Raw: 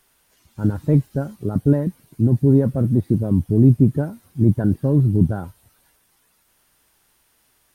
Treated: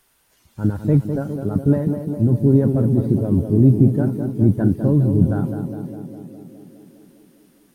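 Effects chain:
tape delay 205 ms, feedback 82%, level −5 dB, low-pass 1,100 Hz

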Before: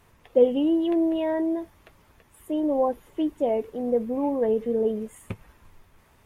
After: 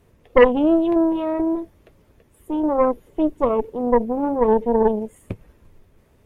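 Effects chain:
low shelf with overshoot 680 Hz +7.5 dB, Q 1.5
harmonic generator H 6 −13 dB, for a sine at 2 dBFS
level −4 dB

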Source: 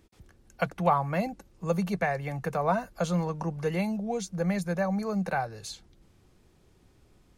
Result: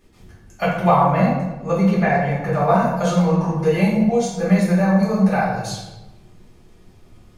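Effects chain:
0:01.11–0:02.58: high-shelf EQ 6,300 Hz −11 dB
convolution reverb RT60 1.1 s, pre-delay 5 ms, DRR −8 dB

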